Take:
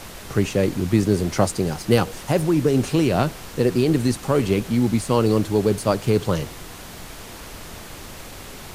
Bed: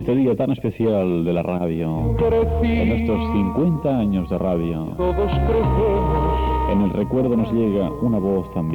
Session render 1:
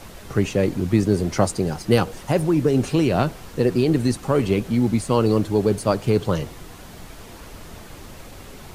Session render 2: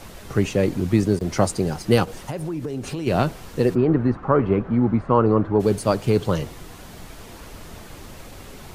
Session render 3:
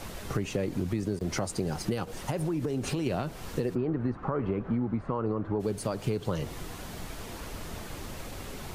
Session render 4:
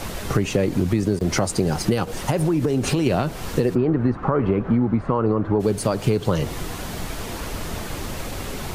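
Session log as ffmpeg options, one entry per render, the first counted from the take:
-af "afftdn=nr=6:nf=-38"
-filter_complex "[0:a]asplit=3[a][b][c];[a]afade=t=out:st=2.04:d=0.02[d];[b]acompressor=threshold=-25dB:ratio=6:attack=3.2:release=140:knee=1:detection=peak,afade=t=in:st=2.04:d=0.02,afade=t=out:st=3.06:d=0.02[e];[c]afade=t=in:st=3.06:d=0.02[f];[d][e][f]amix=inputs=3:normalize=0,asplit=3[g][h][i];[g]afade=t=out:st=3.74:d=0.02[j];[h]lowpass=f=1.3k:t=q:w=2,afade=t=in:st=3.74:d=0.02,afade=t=out:st=5.59:d=0.02[k];[i]afade=t=in:st=5.59:d=0.02[l];[j][k][l]amix=inputs=3:normalize=0,asplit=3[m][n][o];[m]atrim=end=1.19,asetpts=PTS-STARTPTS,afade=t=out:st=0.89:d=0.3:c=log:silence=0.0707946[p];[n]atrim=start=1.19:end=1.21,asetpts=PTS-STARTPTS,volume=-23dB[q];[o]atrim=start=1.21,asetpts=PTS-STARTPTS,afade=t=in:d=0.3:c=log:silence=0.0707946[r];[p][q][r]concat=n=3:v=0:a=1"
-af "alimiter=limit=-14dB:level=0:latency=1:release=275,acompressor=threshold=-26dB:ratio=5"
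-af "volume=10dB"

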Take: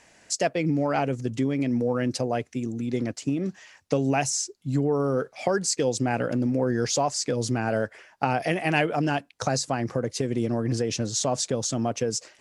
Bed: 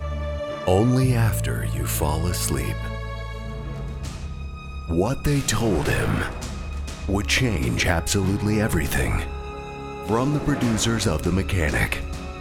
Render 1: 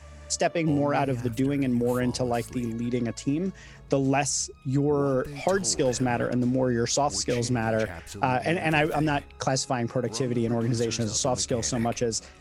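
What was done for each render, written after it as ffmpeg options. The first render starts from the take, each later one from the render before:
-filter_complex "[1:a]volume=-18dB[a];[0:a][a]amix=inputs=2:normalize=0"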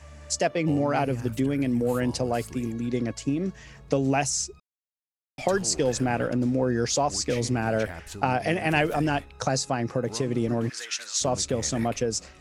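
-filter_complex "[0:a]asplit=3[a][b][c];[a]afade=t=out:st=10.68:d=0.02[d];[b]highpass=f=1.7k:t=q:w=1.7,afade=t=in:st=10.68:d=0.02,afade=t=out:st=11.2:d=0.02[e];[c]afade=t=in:st=11.2:d=0.02[f];[d][e][f]amix=inputs=3:normalize=0,asplit=3[g][h][i];[g]atrim=end=4.6,asetpts=PTS-STARTPTS,afade=t=out:st=4.596:d=0.004:c=hsin[j];[h]atrim=start=4.6:end=5.38,asetpts=PTS-STARTPTS,volume=0[k];[i]atrim=start=5.38,asetpts=PTS-STARTPTS,afade=t=in:d=0.004:c=hsin[l];[j][k][l]concat=n=3:v=0:a=1"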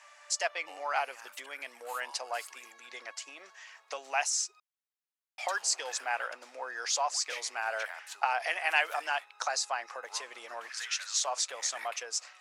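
-af "highpass=f=840:w=0.5412,highpass=f=840:w=1.3066,highshelf=f=5.1k:g=-5"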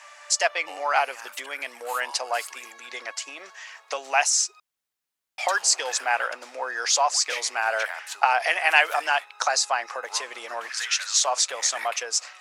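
-af "volume=9dB"

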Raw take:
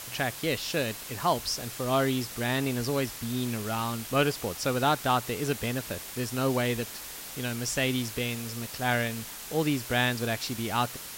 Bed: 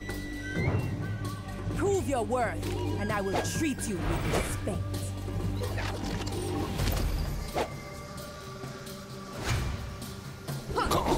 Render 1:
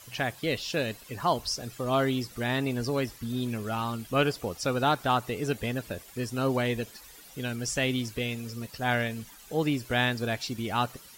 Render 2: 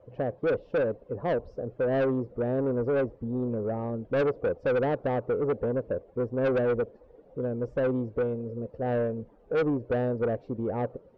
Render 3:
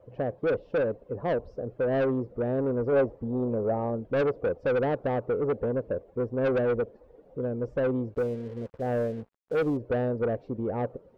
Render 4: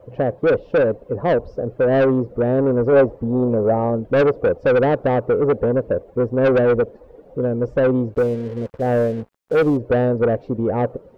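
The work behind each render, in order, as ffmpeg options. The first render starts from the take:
-af "afftdn=nr=13:nf=-41"
-af "lowpass=f=510:t=q:w=4.9,asoftclip=type=tanh:threshold=-21.5dB"
-filter_complex "[0:a]asettb=1/sr,asplit=3[a][b][c];[a]atrim=end=2.924[d];[b]atrim=start=2.92:end=4,asetpts=PTS-STARTPTS,afade=t=in:d=0.004:c=qsin,afade=t=out:st=1.076:d=0.004:c=qsin,equalizer=f=740:w=1:g=6[e];[c]atrim=start=3.996[f];[d][e]acrossfade=d=0.004:c1=hsin:c2=qsin[g];[g][f]acrossfade=d=0.004:c1=qsin:c2=hsin,asettb=1/sr,asplit=3[h][i][j];[h]atrim=end=8.144[k];[i]atrim=start=8.14:end=9.77,asetpts=PTS-STARTPTS,afade=t=in:d=0.004:c=qsin,afade=t=out:st=1.626:d=0.004:c=qsin,aeval=exprs='sgn(val(0))*max(abs(val(0))-0.00299,0)':c=same[l];[j]atrim=start=9.766[m];[k][l]acrossfade=d=0.004:c1=hsin:c2=qsin[n];[n][m]acrossfade=d=0.004:c1=qsin:c2=hsin"
-af "volume=10dB"

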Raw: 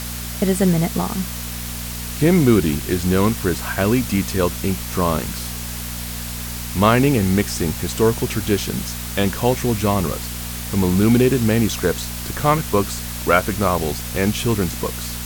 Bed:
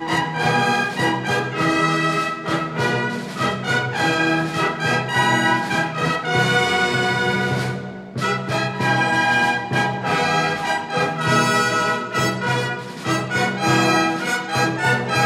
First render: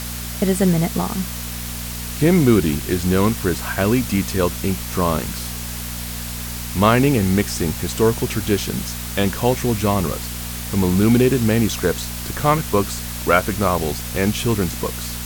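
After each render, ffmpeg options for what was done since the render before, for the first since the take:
-af anull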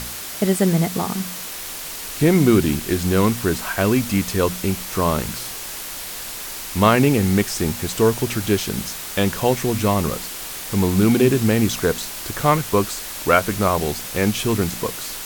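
-af "bandreject=f=60:t=h:w=4,bandreject=f=120:t=h:w=4,bandreject=f=180:t=h:w=4,bandreject=f=240:t=h:w=4"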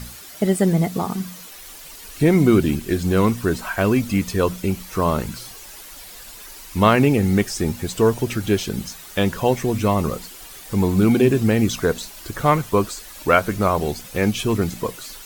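-af "afftdn=nr=11:nf=-32"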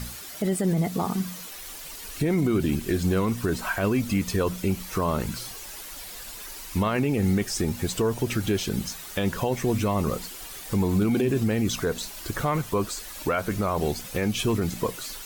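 -af "acompressor=threshold=-23dB:ratio=1.5,alimiter=limit=-15.5dB:level=0:latency=1:release=15"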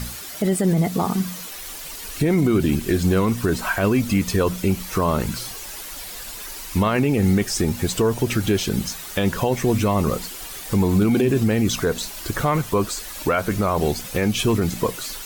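-af "volume=5dB"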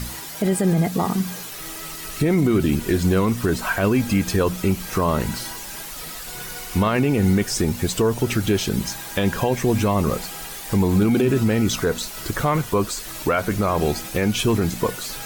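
-filter_complex "[1:a]volume=-22dB[a];[0:a][a]amix=inputs=2:normalize=0"

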